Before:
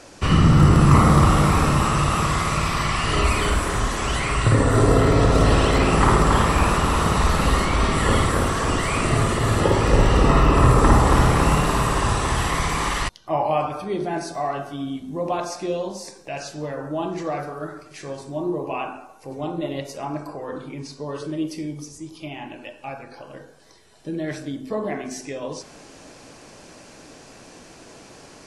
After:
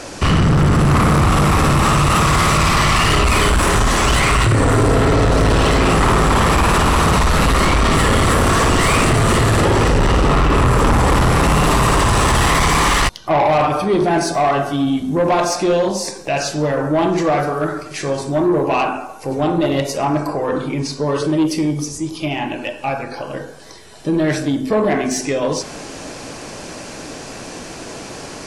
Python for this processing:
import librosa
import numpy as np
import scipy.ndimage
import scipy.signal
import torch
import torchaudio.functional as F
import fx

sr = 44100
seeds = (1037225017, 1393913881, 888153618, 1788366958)

p1 = fx.over_compress(x, sr, threshold_db=-22.0, ratio=-1.0)
p2 = x + F.gain(torch.from_numpy(p1), -1.0).numpy()
p3 = 10.0 ** (-16.0 / 20.0) * np.tanh(p2 / 10.0 ** (-16.0 / 20.0))
y = F.gain(torch.from_numpy(p3), 6.0).numpy()